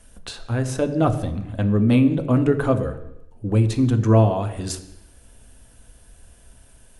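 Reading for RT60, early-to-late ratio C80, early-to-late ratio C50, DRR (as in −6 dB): 0.85 s, 14.0 dB, 12.0 dB, 6.5 dB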